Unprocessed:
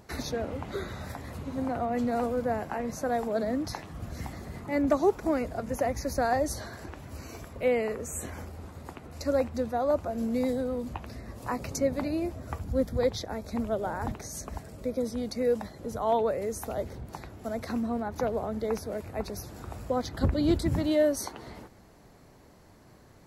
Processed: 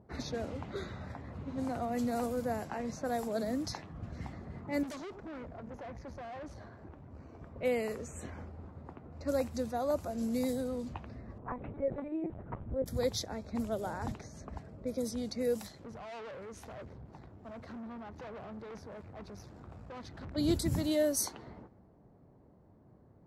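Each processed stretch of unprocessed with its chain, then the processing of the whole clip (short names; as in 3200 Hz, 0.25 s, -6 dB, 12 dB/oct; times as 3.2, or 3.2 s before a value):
4.83–7.41 echo 93 ms -22.5 dB + tube stage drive 36 dB, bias 0.55
11.38–12.86 LPF 1500 Hz + LPC vocoder at 8 kHz pitch kept
15.58–20.36 tube stage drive 38 dB, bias 0.6 + high shelf 2300 Hz +9 dB
whole clip: low-pass opened by the level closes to 700 Hz, open at -25.5 dBFS; HPF 94 Hz 6 dB/oct; tone controls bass +5 dB, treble +11 dB; gain -6 dB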